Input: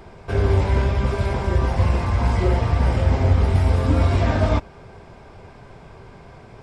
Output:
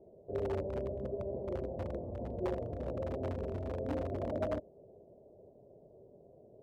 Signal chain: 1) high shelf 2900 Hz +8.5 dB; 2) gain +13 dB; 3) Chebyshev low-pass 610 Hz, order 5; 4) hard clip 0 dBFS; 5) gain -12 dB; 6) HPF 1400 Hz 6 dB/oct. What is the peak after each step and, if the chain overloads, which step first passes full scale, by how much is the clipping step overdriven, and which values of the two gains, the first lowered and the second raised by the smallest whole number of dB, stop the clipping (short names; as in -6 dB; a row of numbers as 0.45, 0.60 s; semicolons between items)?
-6.0, +7.0, +6.0, 0.0, -12.0, -21.0 dBFS; step 2, 6.0 dB; step 2 +7 dB, step 5 -6 dB